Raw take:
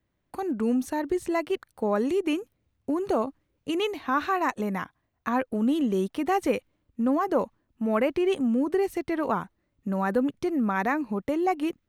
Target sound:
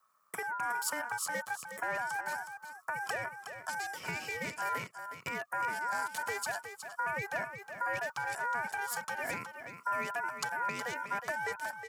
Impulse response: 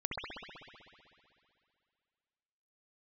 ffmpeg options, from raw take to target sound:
-af "asoftclip=type=tanh:threshold=-24dB,asetnsamples=n=441:p=0,asendcmd='3.06 equalizer g 10.5',equalizer=f=2.7k:w=0.31:g=4,acompressor=threshold=-32dB:ratio=5,asuperstop=centerf=2500:order=4:qfactor=0.73,bass=f=250:g=7,treble=f=4k:g=13,aecho=1:1:1.7:0.33,aecho=1:1:366:0.355,aeval=exprs='val(0)*sin(2*PI*1200*n/s)':c=same,highpass=f=120:w=0.5412,highpass=f=120:w=1.3066"

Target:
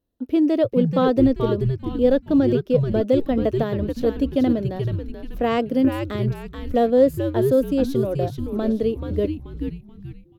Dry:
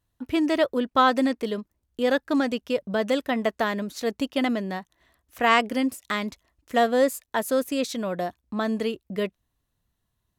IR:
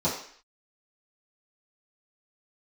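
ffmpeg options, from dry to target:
-filter_complex "[0:a]equalizer=f=125:t=o:w=1:g=-7,equalizer=f=250:t=o:w=1:g=9,equalizer=f=500:t=o:w=1:g=9,equalizer=f=1k:t=o:w=1:g=-6,equalizer=f=2k:t=o:w=1:g=-7,equalizer=f=8k:t=o:w=1:g=-11,asplit=6[a][b][c][d][e][f];[b]adelay=432,afreqshift=-140,volume=-5.5dB[g];[c]adelay=864,afreqshift=-280,volume=-13.5dB[h];[d]adelay=1296,afreqshift=-420,volume=-21.4dB[i];[e]adelay=1728,afreqshift=-560,volume=-29.4dB[j];[f]adelay=2160,afreqshift=-700,volume=-37.3dB[k];[a][g][h][i][j][k]amix=inputs=6:normalize=0,volume=-3dB"

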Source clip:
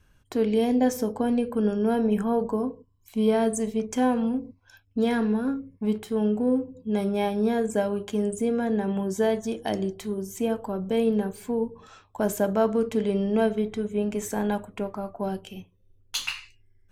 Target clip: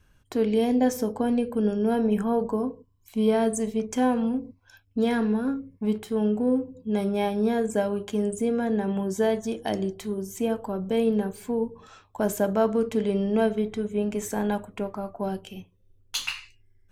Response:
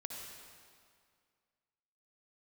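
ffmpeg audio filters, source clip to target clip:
-filter_complex "[0:a]asettb=1/sr,asplit=3[a][b][c];[a]atrim=end=1.434[d];[b]atrim=start=1.43:end=1.92,asetpts=PTS-STARTPTS,afade=t=in:d=0.004:c=qsin,afade=t=out:st=0.486:d=0.004:c=qsin,equalizer=f=1.2k:t=o:w=0.77:g=-5[e];[c]atrim=start=1.916[f];[d][e]acrossfade=d=0.004:c1=hsin:c2=qsin[g];[g][f]acrossfade=d=0.004:c1=qsin:c2=hsin"

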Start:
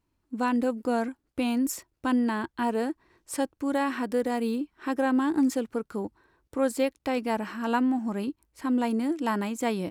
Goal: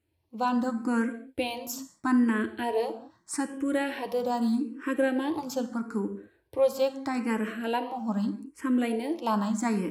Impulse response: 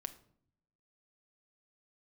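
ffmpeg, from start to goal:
-filter_complex "[0:a]highpass=61[a];[1:a]atrim=start_sample=2205,atrim=end_sample=6174,asetrate=26901,aresample=44100[b];[a][b]afir=irnorm=-1:irlink=0,asplit=2[c][d];[d]afreqshift=0.79[e];[c][e]amix=inputs=2:normalize=1,volume=3dB"

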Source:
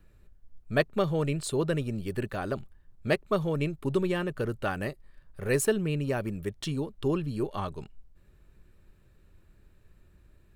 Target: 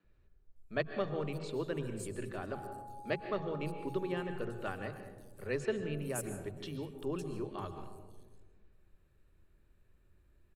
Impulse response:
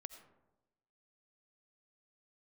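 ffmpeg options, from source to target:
-filter_complex "[0:a]asettb=1/sr,asplit=3[a][b][c];[a]atrim=end=2.534[d];[b]atrim=start=2.53:end=4.36,asetpts=PTS-STARTPTS,afade=t=in:d=0.004:c=qsin,afade=t=out:st=1.826:d=0.004:c=qsin,aeval=exprs='val(0)+0.0141*sin(2*PI*830*n/s)':c=same[e];[c]atrim=start=4.356[f];[d][e]acrossfade=d=0.004:c1=hsin:c2=qsin[g];[g][f]acrossfade=d=0.004:c1=qsin:c2=hsin,acrossover=split=160|5700[h][i][j];[h]adelay=40[k];[j]adelay=560[l];[k][i][l]amix=inputs=3:normalize=0[m];[1:a]atrim=start_sample=2205,asetrate=26460,aresample=44100[n];[m][n]afir=irnorm=-1:irlink=0,volume=-5.5dB"

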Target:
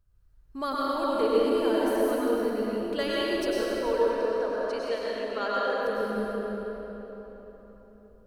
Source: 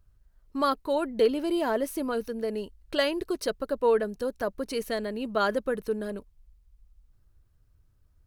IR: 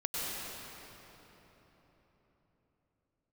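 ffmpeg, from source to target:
-filter_complex "[0:a]asettb=1/sr,asplit=3[a][b][c];[a]atrim=end=3.814[d];[b]atrim=start=3.81:end=5.82,asetpts=PTS-STARTPTS,afade=t=in:d=0.004:c=qsin,afade=t=out:st=2.006:d=0.004:c=qsin,highpass=430,lowpass=5.8k[e];[c]atrim=start=5.816[f];[d][e]acrossfade=d=0.004:c1=hsin:c2=qsin[g];[g][f]acrossfade=d=0.004:c1=qsin:c2=hsin[h];[1:a]atrim=start_sample=2205[i];[h][i]afir=irnorm=-1:irlink=0,volume=-5dB"

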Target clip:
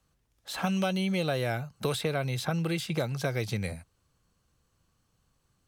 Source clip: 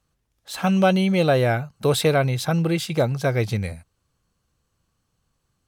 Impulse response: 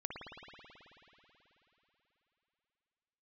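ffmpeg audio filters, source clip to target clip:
-filter_complex "[0:a]acrossover=split=110|1300|3200[a][b][c][d];[a]acompressor=threshold=-43dB:ratio=4[e];[b]acompressor=threshold=-30dB:ratio=4[f];[c]acompressor=threshold=-40dB:ratio=4[g];[d]acompressor=threshold=-40dB:ratio=4[h];[e][f][g][h]amix=inputs=4:normalize=0"

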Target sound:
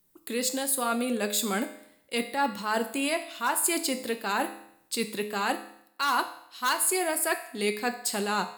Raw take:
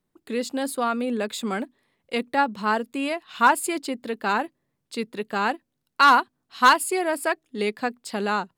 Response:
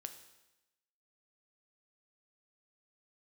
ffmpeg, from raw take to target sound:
-filter_complex "[0:a]aemphasis=mode=production:type=75fm,areverse,acompressor=threshold=-26dB:ratio=6,areverse[a];[1:a]atrim=start_sample=2205,asetrate=61740,aresample=44100[b];[a][b]afir=irnorm=-1:irlink=0,volume=9dB"

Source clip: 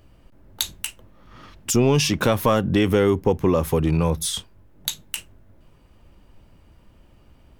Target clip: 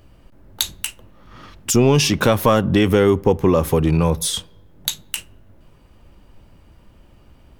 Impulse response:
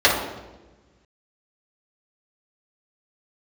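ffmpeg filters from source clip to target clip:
-filter_complex "[0:a]asplit=2[a][b];[1:a]atrim=start_sample=2205[c];[b][c]afir=irnorm=-1:irlink=0,volume=-43.5dB[d];[a][d]amix=inputs=2:normalize=0,volume=3.5dB"

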